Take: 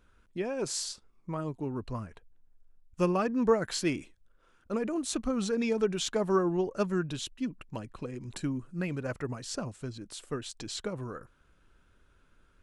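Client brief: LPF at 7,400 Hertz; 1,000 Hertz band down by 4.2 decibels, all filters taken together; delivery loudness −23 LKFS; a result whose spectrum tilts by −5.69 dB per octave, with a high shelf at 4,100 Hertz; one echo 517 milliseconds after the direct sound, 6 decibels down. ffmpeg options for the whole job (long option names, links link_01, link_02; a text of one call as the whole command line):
ffmpeg -i in.wav -af "lowpass=7400,equalizer=frequency=1000:width_type=o:gain=-5,highshelf=frequency=4100:gain=-4,aecho=1:1:517:0.501,volume=10dB" out.wav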